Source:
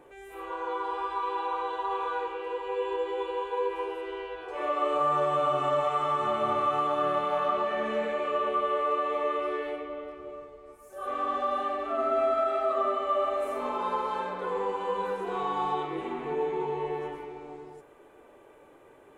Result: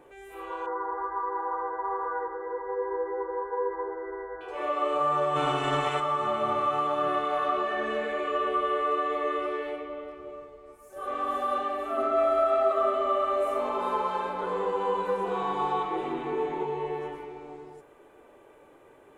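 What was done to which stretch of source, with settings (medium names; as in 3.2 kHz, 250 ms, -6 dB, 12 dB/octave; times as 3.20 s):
0.66–4.41 s: brick-wall FIR low-pass 2 kHz
5.35–5.99 s: spectral peaks clipped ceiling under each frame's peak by 17 dB
7.08–9.46 s: comb 2.8 ms, depth 61%
10.48–11.10 s: echo throw 480 ms, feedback 65%, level -0.5 dB
11.77–16.63 s: echo whose repeats swap between lows and highs 200 ms, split 1.3 kHz, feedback 53%, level -3 dB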